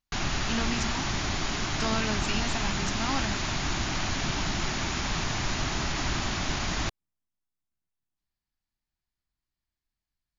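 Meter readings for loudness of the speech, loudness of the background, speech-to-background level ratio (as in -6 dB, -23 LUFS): -33.5 LUFS, -29.5 LUFS, -4.0 dB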